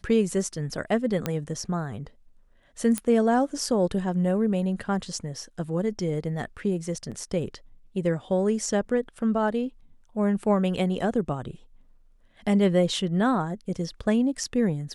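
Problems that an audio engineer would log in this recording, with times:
0:01.26: click −12 dBFS
0:02.98: click −12 dBFS
0:07.11–0:07.12: drop-out 7.2 ms

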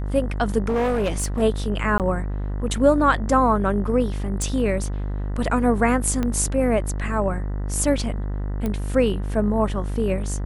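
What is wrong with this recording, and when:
mains buzz 50 Hz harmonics 40 −26 dBFS
0:00.62–0:01.43: clipping −18 dBFS
0:01.98–0:02.00: drop-out 18 ms
0:04.42: click
0:06.23: click −12 dBFS
0:08.66: click −14 dBFS

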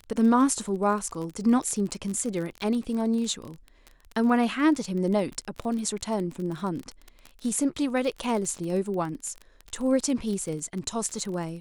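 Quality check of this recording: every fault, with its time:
surface crackle 26 per second −31 dBFS

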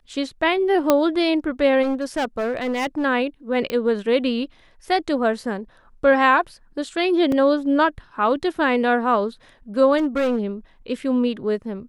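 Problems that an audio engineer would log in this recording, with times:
0:00.90: click −2 dBFS
0:01.82–0:03.05: clipping −19 dBFS
0:03.70: click −12 dBFS
0:07.32: drop-out 2.7 ms
0:09.97–0:10.40: clipping −17 dBFS

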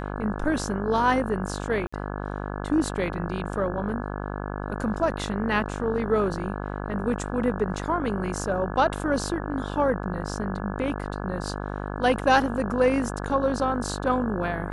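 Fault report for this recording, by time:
mains buzz 50 Hz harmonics 34 −32 dBFS
0:01.87–0:01.93: drop-out 55 ms

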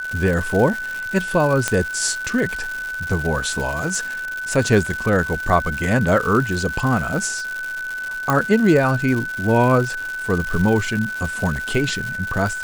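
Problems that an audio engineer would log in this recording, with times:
surface crackle 260 per second −24 dBFS
whistle 1,500 Hz −25 dBFS
0:01.68: click −3 dBFS
0:08.30: click −5 dBFS

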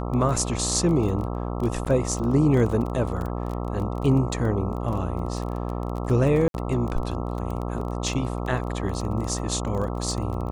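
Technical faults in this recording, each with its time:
mains buzz 60 Hz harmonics 22 −29 dBFS
surface crackle 18 per second −29 dBFS
0:01.85–0:01.86: drop-out 7.8 ms
0:06.48–0:06.54: drop-out 62 ms

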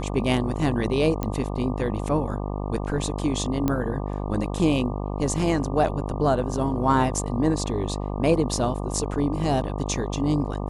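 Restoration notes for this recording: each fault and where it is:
mains buzz 50 Hz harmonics 24 −29 dBFS
0:01.23: click −13 dBFS
0:03.68: click −11 dBFS

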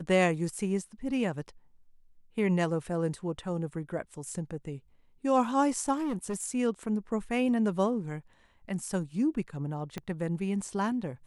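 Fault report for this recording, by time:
0:05.93–0:06.44: clipping −28.5 dBFS
0:09.98: click −21 dBFS

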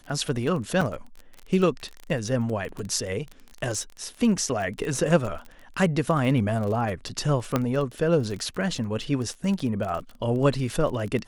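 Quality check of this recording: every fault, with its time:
surface crackle 22 per second −30 dBFS
0:00.81–0:00.82: drop-out 5.1 ms
0:07.56: click −9 dBFS

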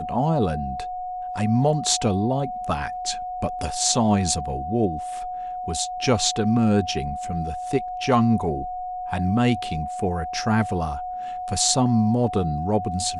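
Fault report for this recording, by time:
whistle 730 Hz −28 dBFS

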